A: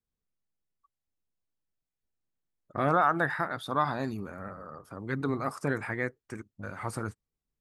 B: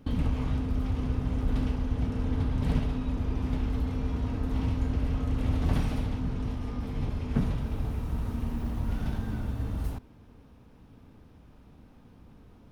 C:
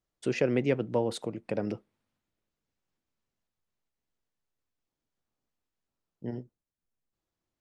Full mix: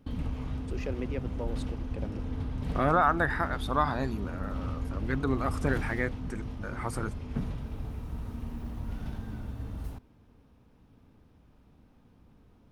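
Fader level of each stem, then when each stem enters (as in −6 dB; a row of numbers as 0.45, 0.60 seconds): +0.5, −6.0, −10.0 decibels; 0.00, 0.00, 0.45 seconds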